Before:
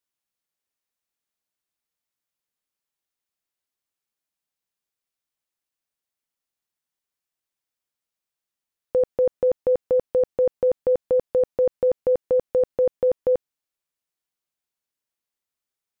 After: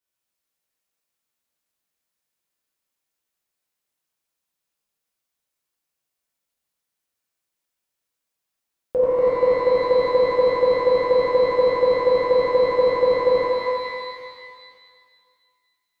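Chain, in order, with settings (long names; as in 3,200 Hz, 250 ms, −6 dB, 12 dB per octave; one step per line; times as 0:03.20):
reverb with rising layers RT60 2 s, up +12 semitones, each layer −8 dB, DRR −7 dB
level −2.5 dB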